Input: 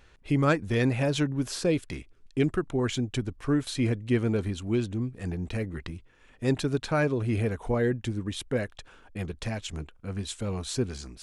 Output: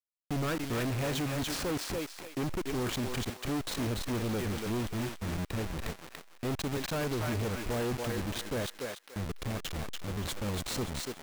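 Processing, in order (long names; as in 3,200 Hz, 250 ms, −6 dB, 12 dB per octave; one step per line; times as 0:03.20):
hold until the input has moved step −30 dBFS
feedback echo with a high-pass in the loop 287 ms, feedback 31%, high-pass 730 Hz, level −3 dB
hard clipping −30 dBFS, distortion −6 dB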